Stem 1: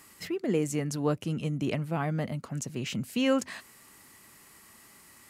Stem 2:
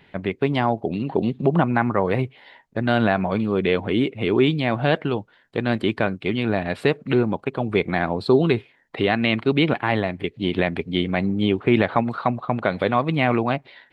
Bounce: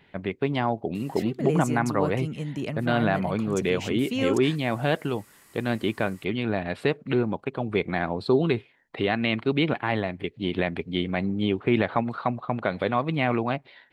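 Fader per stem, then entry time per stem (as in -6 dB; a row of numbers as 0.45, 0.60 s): -1.0, -4.5 dB; 0.95, 0.00 s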